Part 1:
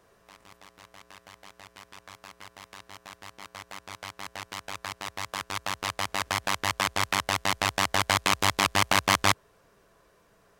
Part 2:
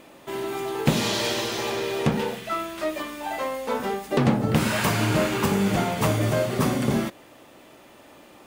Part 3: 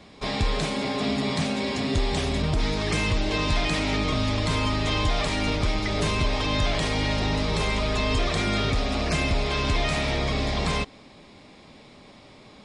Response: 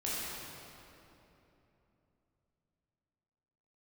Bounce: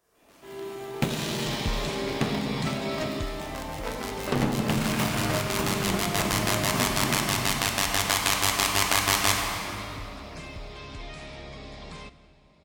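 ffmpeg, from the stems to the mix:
-filter_complex "[0:a]highshelf=frequency=2600:gain=-9,crystalizer=i=5.5:c=0,volume=1dB,asplit=2[link_01][link_02];[link_02]volume=-11.5dB[link_03];[1:a]adynamicequalizer=threshold=0.0178:dfrequency=450:dqfactor=1.2:tfrequency=450:tqfactor=1.2:attack=5:release=100:ratio=0.375:range=1.5:mode=cutabove:tftype=bell,adelay=150,volume=2dB,asplit=2[link_04][link_05];[link_05]volume=-15dB[link_06];[2:a]adelay=1250,volume=-6dB,afade=type=out:start_time=3.04:duration=0.39:silence=0.298538,asplit=2[link_07][link_08];[link_08]volume=-17.5dB[link_09];[link_01][link_04]amix=inputs=2:normalize=0,aeval=exprs='sgn(val(0))*max(abs(val(0))-0.1,0)':channel_layout=same,acompressor=threshold=-28dB:ratio=2,volume=0dB[link_10];[3:a]atrim=start_sample=2205[link_11];[link_03][link_06][link_09]amix=inputs=3:normalize=0[link_12];[link_12][link_11]afir=irnorm=-1:irlink=0[link_13];[link_07][link_10][link_13]amix=inputs=3:normalize=0"

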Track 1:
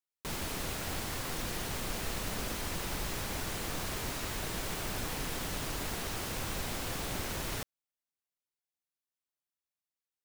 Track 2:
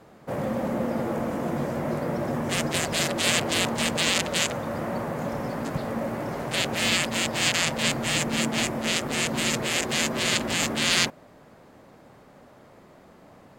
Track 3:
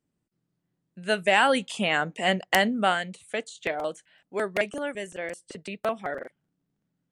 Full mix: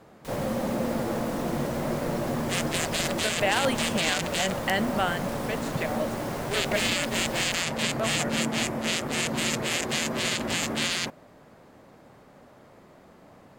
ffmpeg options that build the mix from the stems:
ffmpeg -i stem1.wav -i stem2.wav -i stem3.wav -filter_complex "[0:a]volume=-4.5dB[link_01];[1:a]volume=-1dB[link_02];[2:a]adelay=2150,volume=-3dB[link_03];[link_01][link_02][link_03]amix=inputs=3:normalize=0,alimiter=limit=-12.5dB:level=0:latency=1:release=33" out.wav

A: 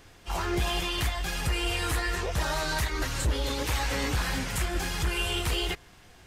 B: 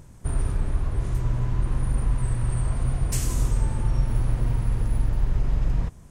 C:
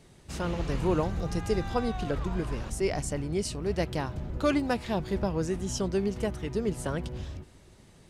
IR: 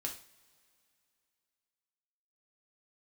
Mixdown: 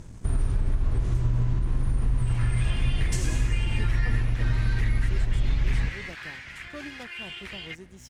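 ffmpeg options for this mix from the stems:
-filter_complex "[0:a]bandpass=frequency=2000:width_type=q:width=2.5:csg=0,adelay=2000,volume=0.5dB[link_01];[1:a]alimiter=limit=-19.5dB:level=0:latency=1:release=297,lowpass=7500,volume=2.5dB,asplit=2[link_02][link_03];[link_03]volume=-4dB[link_04];[2:a]adelay=2300,volume=-12dB[link_05];[link_02][link_05]amix=inputs=2:normalize=0,aeval=exprs='sgn(val(0))*max(abs(val(0))-0.00237,0)':channel_layout=same,acompressor=threshold=-25dB:ratio=6,volume=0dB[link_06];[3:a]atrim=start_sample=2205[link_07];[link_04][link_07]afir=irnorm=-1:irlink=0[link_08];[link_01][link_06][link_08]amix=inputs=3:normalize=0,equalizer=frequency=840:width_type=o:width=2.2:gain=-4"

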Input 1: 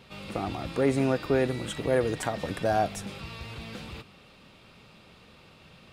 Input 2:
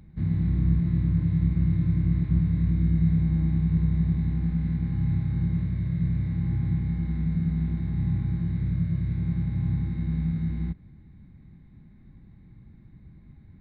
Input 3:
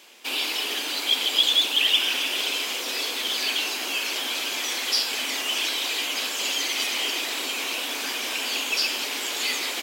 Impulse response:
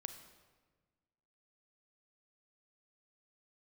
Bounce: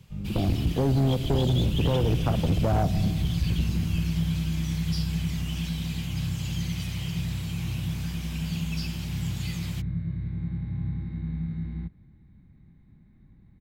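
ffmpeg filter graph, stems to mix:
-filter_complex "[0:a]aemphasis=mode=reproduction:type=riaa,afwtdn=0.0562,volume=-1.5dB,asplit=2[link_01][link_02];[link_02]volume=-3.5dB[link_03];[1:a]adelay=1150,volume=-4.5dB[link_04];[2:a]volume=-15.5dB[link_05];[3:a]atrim=start_sample=2205[link_06];[link_03][link_06]afir=irnorm=-1:irlink=0[link_07];[link_01][link_04][link_05][link_07]amix=inputs=4:normalize=0,highshelf=frequency=11000:gain=4,acrossover=split=170|3000[link_08][link_09][link_10];[link_09]acompressor=threshold=-22dB:ratio=6[link_11];[link_08][link_11][link_10]amix=inputs=3:normalize=0,asoftclip=type=hard:threshold=-18dB"

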